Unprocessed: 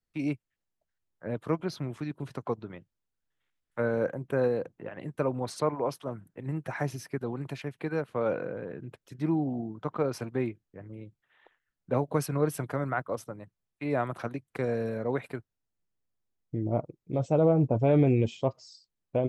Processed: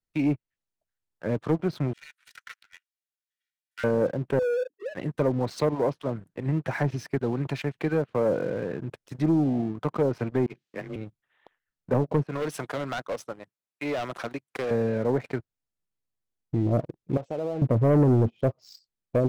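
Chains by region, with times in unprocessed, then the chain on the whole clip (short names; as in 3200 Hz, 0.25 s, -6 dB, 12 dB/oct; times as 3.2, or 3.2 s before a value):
1.93–3.84 minimum comb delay 2.1 ms + steep high-pass 1500 Hz 48 dB/oct
4.39–4.95 sine-wave speech + overloaded stage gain 30 dB
10.46–10.96 weighting filter D + negative-ratio compressor -42 dBFS, ratio -0.5 + frequency shift +25 Hz
12.24–14.71 HPF 490 Hz 6 dB/oct + overloaded stage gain 32 dB
17.17–17.62 HPF 870 Hz 6 dB/oct + bell 4000 Hz -8 dB 2.6 oct + compressor 3:1, threshold -35 dBFS
whole clip: treble ducked by the level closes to 680 Hz, closed at -22.5 dBFS; dynamic EQ 1100 Hz, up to -5 dB, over -42 dBFS, Q 0.99; sample leveller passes 2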